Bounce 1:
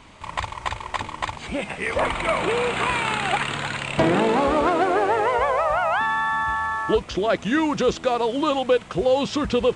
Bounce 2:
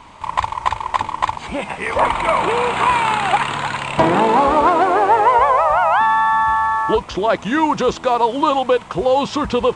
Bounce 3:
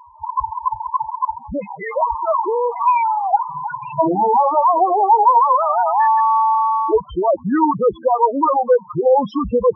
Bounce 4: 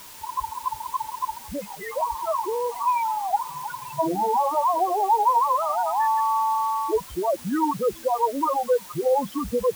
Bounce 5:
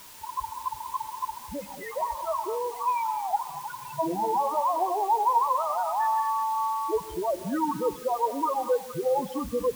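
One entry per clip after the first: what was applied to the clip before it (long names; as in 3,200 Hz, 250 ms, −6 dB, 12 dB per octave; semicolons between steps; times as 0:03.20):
parametric band 950 Hz +10 dB 0.63 octaves; level +2 dB
spectral peaks only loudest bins 4; level +2.5 dB
bit-depth reduction 6 bits, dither triangular; level −7.5 dB
convolution reverb, pre-delay 3 ms, DRR 11 dB; level −4 dB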